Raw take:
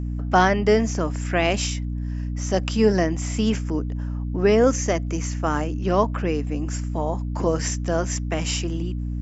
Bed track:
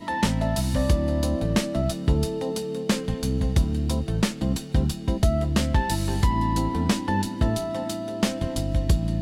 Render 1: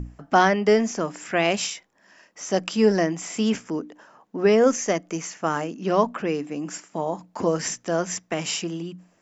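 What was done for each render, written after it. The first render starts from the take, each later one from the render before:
mains-hum notches 60/120/180/240/300 Hz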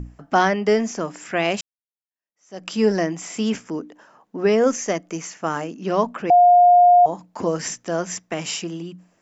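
0:01.61–0:02.70: fade in exponential
0:06.30–0:07.06: beep over 710 Hz −8.5 dBFS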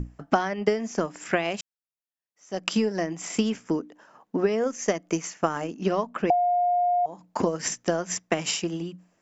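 downward compressor 4 to 1, threshold −24 dBFS, peak gain reduction 11 dB
transient designer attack +6 dB, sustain −5 dB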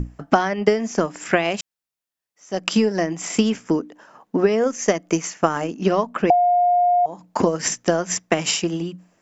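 level +6 dB
brickwall limiter −1 dBFS, peak gain reduction 1.5 dB

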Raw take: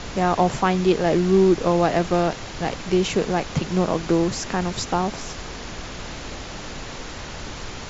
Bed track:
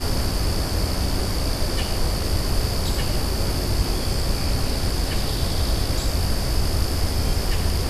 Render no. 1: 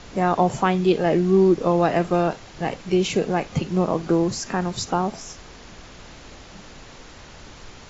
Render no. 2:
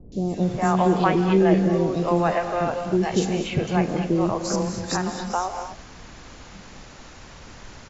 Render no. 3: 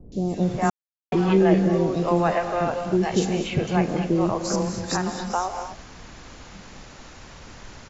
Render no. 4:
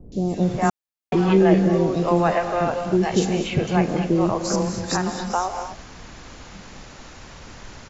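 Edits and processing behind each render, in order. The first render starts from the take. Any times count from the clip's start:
noise reduction from a noise print 9 dB
three-band delay without the direct sound lows, highs, mids 120/410 ms, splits 470/3,400 Hz; reverb whose tail is shaped and stops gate 270 ms rising, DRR 7.5 dB
0:00.70–0:01.12: silence
level +2 dB

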